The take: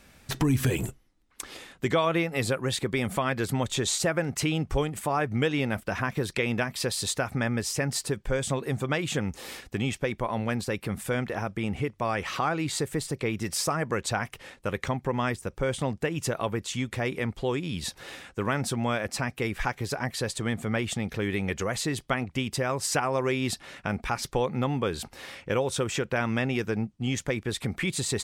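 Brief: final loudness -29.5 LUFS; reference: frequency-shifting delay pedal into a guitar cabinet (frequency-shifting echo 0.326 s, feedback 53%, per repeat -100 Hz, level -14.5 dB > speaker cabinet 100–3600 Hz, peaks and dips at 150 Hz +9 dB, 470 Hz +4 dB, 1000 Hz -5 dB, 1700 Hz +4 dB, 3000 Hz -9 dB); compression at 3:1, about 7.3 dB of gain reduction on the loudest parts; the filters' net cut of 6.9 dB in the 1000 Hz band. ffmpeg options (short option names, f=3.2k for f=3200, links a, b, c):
-filter_complex "[0:a]equalizer=f=1k:t=o:g=-8,acompressor=threshold=-30dB:ratio=3,asplit=6[a][b][c][d][e][f];[b]adelay=326,afreqshift=-100,volume=-14.5dB[g];[c]adelay=652,afreqshift=-200,volume=-20dB[h];[d]adelay=978,afreqshift=-300,volume=-25.5dB[i];[e]adelay=1304,afreqshift=-400,volume=-31dB[j];[f]adelay=1630,afreqshift=-500,volume=-36.6dB[k];[a][g][h][i][j][k]amix=inputs=6:normalize=0,highpass=100,equalizer=f=150:t=q:w=4:g=9,equalizer=f=470:t=q:w=4:g=4,equalizer=f=1k:t=q:w=4:g=-5,equalizer=f=1.7k:t=q:w=4:g=4,equalizer=f=3k:t=q:w=4:g=-9,lowpass=f=3.6k:w=0.5412,lowpass=f=3.6k:w=1.3066,volume=3.5dB"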